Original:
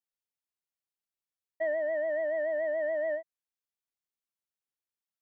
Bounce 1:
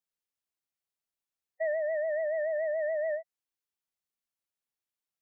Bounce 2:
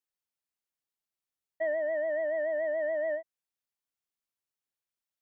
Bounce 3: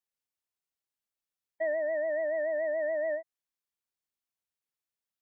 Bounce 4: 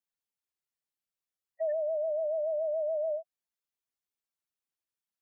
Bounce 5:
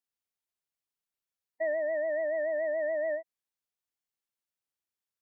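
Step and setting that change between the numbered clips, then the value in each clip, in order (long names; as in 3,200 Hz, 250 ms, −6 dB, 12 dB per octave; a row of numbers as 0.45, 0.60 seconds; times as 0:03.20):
gate on every frequency bin, under each frame's peak: −20, −60, −45, −10, −35 decibels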